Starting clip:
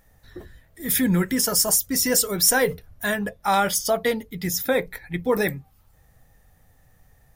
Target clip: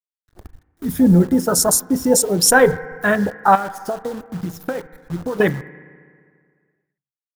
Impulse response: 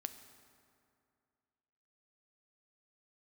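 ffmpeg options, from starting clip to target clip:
-filter_complex "[0:a]afwtdn=0.0501,agate=range=-8dB:threshold=-53dB:ratio=16:detection=peak,asettb=1/sr,asplit=3[a][b][c];[a]atrim=end=3.554[d];[b]atrim=start=3.55:end=5.4,asetpts=PTS-STARTPTS,afade=t=in:d=0.004:c=qsin,afade=t=out:st=1.846:d=0.004:c=qsin,acompressor=threshold=-31dB:ratio=12[e];[c]atrim=start=5.396[f];[d][e]acrossfade=d=0.004:c1=hsin:c2=qsin[g];[g][f]acrossfade=d=0.004:c1=qsin:c2=hsin,acrusher=bits=8:dc=4:mix=0:aa=0.000001,asplit=2[h][i];[i]lowpass=f=1.6k:t=q:w=2.1[j];[1:a]atrim=start_sample=2205,asetrate=52920,aresample=44100[k];[j][k]afir=irnorm=-1:irlink=0,volume=-1dB[l];[h][l]amix=inputs=2:normalize=0,volume=5dB"

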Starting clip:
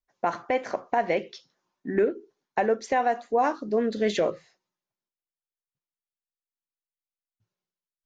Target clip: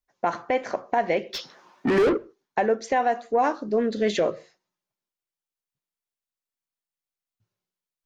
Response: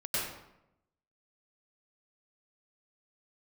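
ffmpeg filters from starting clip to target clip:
-filter_complex "[0:a]acontrast=85,asplit=3[a][b][c];[a]afade=t=out:st=1.33:d=0.02[d];[b]asplit=2[e][f];[f]highpass=f=720:p=1,volume=33dB,asoftclip=type=tanh:threshold=-8dB[g];[e][g]amix=inputs=2:normalize=0,lowpass=f=1.7k:p=1,volume=-6dB,afade=t=in:st=1.33:d=0.02,afade=t=out:st=2.16:d=0.02[h];[c]afade=t=in:st=2.16:d=0.02[i];[d][h][i]amix=inputs=3:normalize=0,asplit=2[j][k];[1:a]atrim=start_sample=2205,afade=t=out:st=0.21:d=0.01,atrim=end_sample=9702,highshelf=f=2k:g=-10[l];[k][l]afir=irnorm=-1:irlink=0,volume=-29.5dB[m];[j][m]amix=inputs=2:normalize=0,volume=-5.5dB"

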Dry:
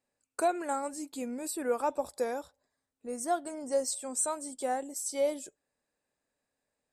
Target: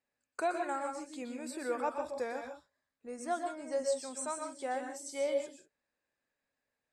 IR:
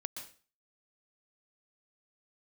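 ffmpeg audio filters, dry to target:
-filter_complex "[0:a]lowpass=7k,equalizer=f=1.9k:w=0.92:g=6.5[a];[1:a]atrim=start_sample=2205,afade=t=out:st=0.24:d=0.01,atrim=end_sample=11025[b];[a][b]afir=irnorm=-1:irlink=0,volume=-3.5dB"

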